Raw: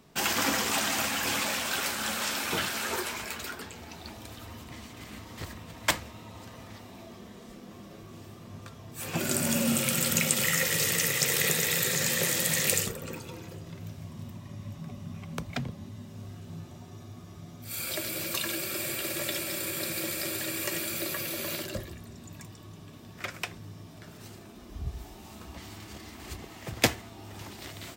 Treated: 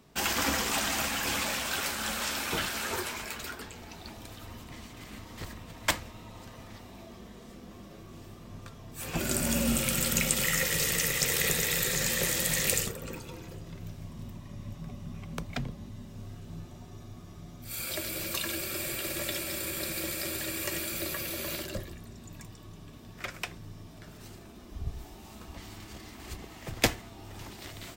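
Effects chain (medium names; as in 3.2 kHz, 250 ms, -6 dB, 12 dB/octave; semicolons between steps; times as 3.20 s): octave divider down 2 oct, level -5 dB; trim -1.5 dB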